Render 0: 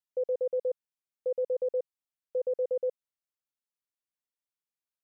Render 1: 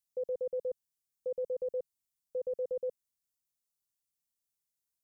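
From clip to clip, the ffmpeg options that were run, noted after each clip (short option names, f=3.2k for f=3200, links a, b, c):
-af "bass=f=250:g=12,treble=f=4k:g=14,volume=-6dB"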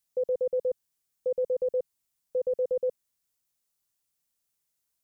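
-af "acontrast=29,volume=2dB"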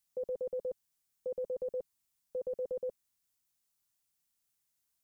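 -af "equalizer=f=490:w=3:g=-8.5,volume=-1dB"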